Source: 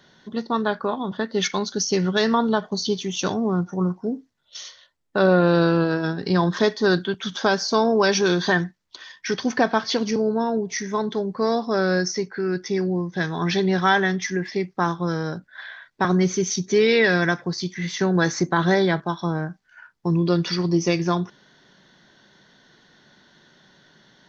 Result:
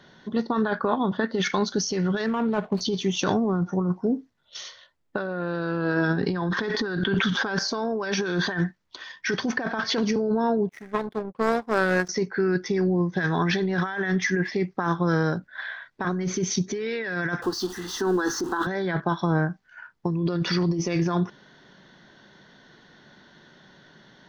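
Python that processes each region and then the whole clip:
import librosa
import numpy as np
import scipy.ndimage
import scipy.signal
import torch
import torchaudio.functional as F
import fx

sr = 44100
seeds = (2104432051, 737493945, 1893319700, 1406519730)

y = fx.chain(x, sr, fx.median_filter(points=25),
    fx.lowpass(hz=3200.0, slope=6), at=(2.26, 2.81))
y = fx.chain(y, sr, fx.air_absorb(metres=85.0),
    fx.notch(hz=620.0, q=6.7),
    fx.sustainer(db_per_s=27.0), at=(6.16, 7.59))
y = fx.chain(y, sr, fx.median_filter(points=9),
    fx.power_curve(exponent=2.0), at=(10.69, 12.09))
y = fx.chain(y, sr, fx.zero_step(step_db=-30.0),
    fx.fixed_phaser(hz=600.0, stages=6), at=(17.42, 18.67))
y = fx.dynamic_eq(y, sr, hz=1600.0, q=2.3, threshold_db=-37.0, ratio=4.0, max_db=6)
y = fx.over_compress(y, sr, threshold_db=-24.0, ratio=-1.0)
y = fx.high_shelf(y, sr, hz=4400.0, db=-9.5)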